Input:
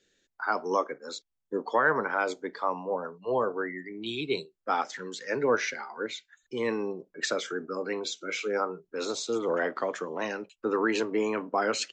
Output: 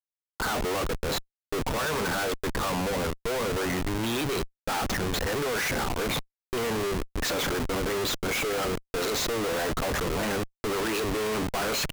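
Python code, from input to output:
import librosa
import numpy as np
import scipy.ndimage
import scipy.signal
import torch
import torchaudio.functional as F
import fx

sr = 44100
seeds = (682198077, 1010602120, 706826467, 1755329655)

y = fx.rattle_buzz(x, sr, strikes_db=-42.0, level_db=-35.0)
y = fx.schmitt(y, sr, flips_db=-39.5)
y = F.gain(torch.from_numpy(y), 3.0).numpy()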